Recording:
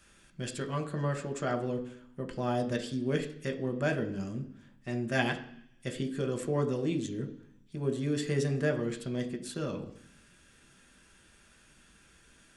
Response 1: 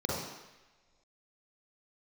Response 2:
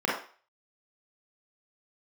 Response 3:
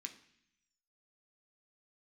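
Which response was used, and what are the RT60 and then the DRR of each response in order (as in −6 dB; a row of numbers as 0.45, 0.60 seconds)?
3; non-exponential decay, 0.40 s, 0.65 s; −5.5, −4.5, 3.5 decibels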